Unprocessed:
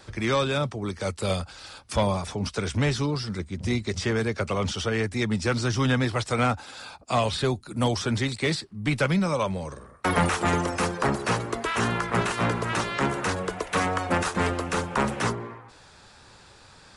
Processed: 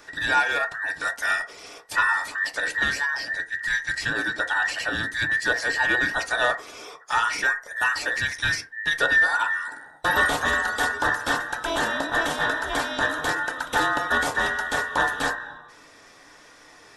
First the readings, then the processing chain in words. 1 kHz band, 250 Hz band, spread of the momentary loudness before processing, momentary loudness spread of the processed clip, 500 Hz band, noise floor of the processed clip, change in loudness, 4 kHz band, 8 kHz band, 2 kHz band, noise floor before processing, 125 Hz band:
+2.5 dB, −9.5 dB, 7 LU, 6 LU, −4.5 dB, −51 dBFS, +3.0 dB, +2.5 dB, +0.5 dB, +10.5 dB, −52 dBFS, −15.0 dB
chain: frequency inversion band by band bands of 2,000 Hz
feedback delay network reverb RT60 0.34 s, low-frequency decay 0.75×, high-frequency decay 0.4×, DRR 4.5 dB

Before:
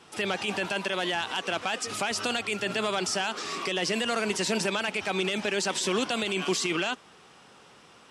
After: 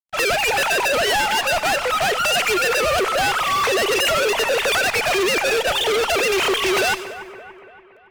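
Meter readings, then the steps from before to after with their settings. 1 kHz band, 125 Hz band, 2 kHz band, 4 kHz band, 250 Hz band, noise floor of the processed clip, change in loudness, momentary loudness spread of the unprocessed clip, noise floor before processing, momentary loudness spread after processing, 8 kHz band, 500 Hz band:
+12.0 dB, +3.0 dB, +11.5 dB, +9.0 dB, +1.5 dB, −48 dBFS, +10.0 dB, 3 LU, −54 dBFS, 2 LU, +8.0 dB, +10.5 dB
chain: three sine waves on the formant tracks
fuzz pedal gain 42 dB, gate −50 dBFS
echo with a time of its own for lows and highs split 2,300 Hz, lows 285 ms, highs 97 ms, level −13.5 dB
level −4.5 dB

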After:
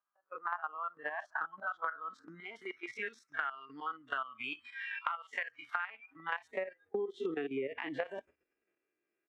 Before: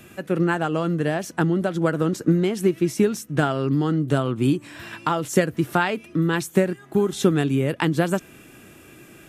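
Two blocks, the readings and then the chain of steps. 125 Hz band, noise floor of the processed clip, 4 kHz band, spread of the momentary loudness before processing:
−39.0 dB, below −85 dBFS, −16.0 dB, 4 LU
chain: spectrum averaged block by block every 50 ms
echo with shifted repeats 141 ms, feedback 52%, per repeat −48 Hz, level −22 dB
noise reduction from a noise print of the clip's start 25 dB
noise gate −46 dBFS, range −11 dB
low-shelf EQ 80 Hz +11.5 dB
low-pass filter sweep 1,000 Hz → 2,100 Hz, 0:00.15–0:03.62
output level in coarse steps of 11 dB
dynamic equaliser 2,800 Hz, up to +4 dB, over −48 dBFS, Q 2.8
high-pass filter sweep 1,200 Hz → 410 Hz, 0:05.84–0:07.12
downward compressor 16 to 1, threshold −33 dBFS, peak gain reduction 20.5 dB

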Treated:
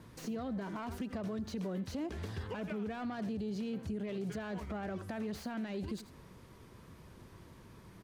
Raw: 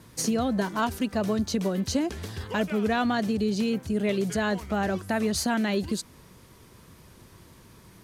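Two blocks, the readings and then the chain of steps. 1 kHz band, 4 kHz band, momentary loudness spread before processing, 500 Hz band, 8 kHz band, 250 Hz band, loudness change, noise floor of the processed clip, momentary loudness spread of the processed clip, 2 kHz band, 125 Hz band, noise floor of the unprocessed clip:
−15.0 dB, −17.0 dB, 4 LU, −13.0 dB, −21.0 dB, −12.0 dB, −12.5 dB, −56 dBFS, 17 LU, −15.5 dB, −9.0 dB, −53 dBFS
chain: phase distortion by the signal itself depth 0.11 ms
single-tap delay 86 ms −20 dB
brickwall limiter −24.5 dBFS, peak gain reduction 11.5 dB
downward compressor 2.5 to 1, threshold −34 dBFS, peak gain reduction 5 dB
high-shelf EQ 3,500 Hz −9.5 dB
slew-rate limiting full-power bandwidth 34 Hz
level −2.5 dB

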